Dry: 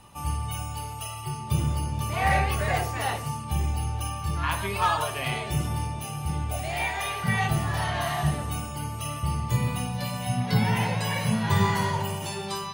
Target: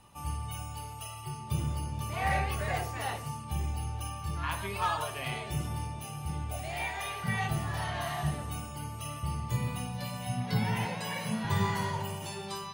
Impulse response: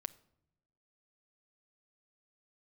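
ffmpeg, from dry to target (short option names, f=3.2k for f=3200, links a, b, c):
-filter_complex "[0:a]asettb=1/sr,asplit=3[a][b][c];[a]atrim=end=10.854[d];[b]atrim=start=10.85:end=11.45,asetpts=PTS-STARTPTS,afade=t=in:d=0.004:c=qsin,afade=t=out:st=0.596:d=0.004:c=qsin,highpass=f=150:w=0.5412,highpass=f=150:w=1.3066[e];[c]atrim=start=11.446[f];[d][e]acrossfade=d=0.004:c1=hsin:c2=qsin[g];[g][f]acrossfade=d=0.004:c1=qsin:c2=hsin,volume=-6.5dB"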